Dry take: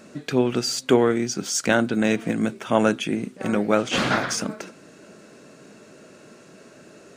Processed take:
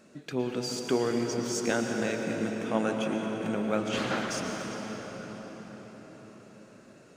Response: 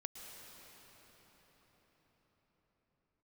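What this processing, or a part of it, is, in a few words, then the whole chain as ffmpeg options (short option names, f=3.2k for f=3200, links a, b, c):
cathedral: -filter_complex "[1:a]atrim=start_sample=2205[a];[0:a][a]afir=irnorm=-1:irlink=0,volume=-5.5dB"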